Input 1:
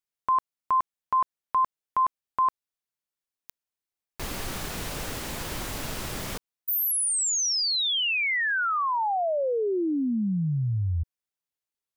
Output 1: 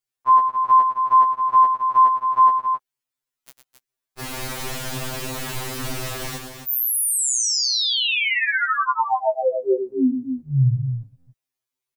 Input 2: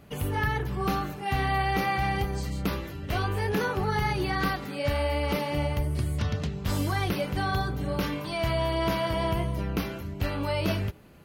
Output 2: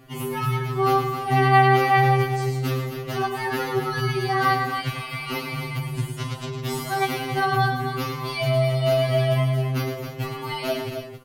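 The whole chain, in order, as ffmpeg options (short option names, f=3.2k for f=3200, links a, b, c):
-filter_complex "[0:a]asplit=2[a][b];[b]aecho=0:1:107.9|268.2:0.398|0.398[c];[a][c]amix=inputs=2:normalize=0,afftfilt=real='re*2.45*eq(mod(b,6),0)':imag='im*2.45*eq(mod(b,6),0)':win_size=2048:overlap=0.75,volume=5.5dB"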